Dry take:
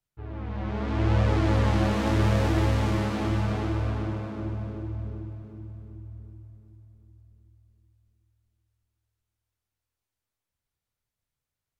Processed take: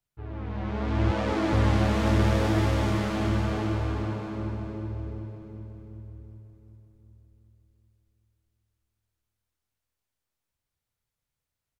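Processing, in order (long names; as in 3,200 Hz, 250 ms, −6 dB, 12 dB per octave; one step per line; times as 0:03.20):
0:01.11–0:01.53: Butterworth high-pass 200 Hz
on a send: repeating echo 218 ms, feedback 58%, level −9 dB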